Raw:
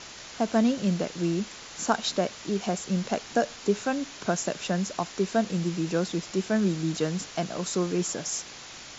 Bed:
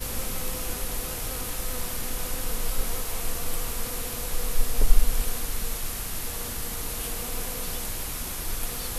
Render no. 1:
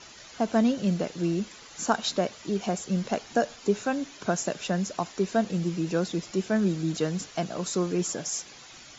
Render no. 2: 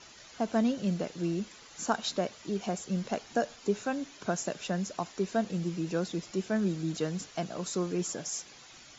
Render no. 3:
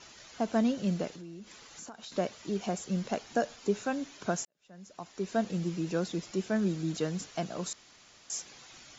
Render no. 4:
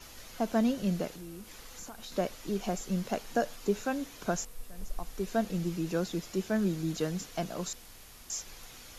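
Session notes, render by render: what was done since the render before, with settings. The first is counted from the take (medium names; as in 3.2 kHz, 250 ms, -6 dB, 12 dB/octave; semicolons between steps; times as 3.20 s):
noise reduction 9 dB, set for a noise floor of -44 dBFS
trim -4.5 dB
1.10–2.12 s: compression, threshold -43 dBFS; 4.45–5.39 s: fade in quadratic; 7.73–8.30 s: room tone
add bed -21 dB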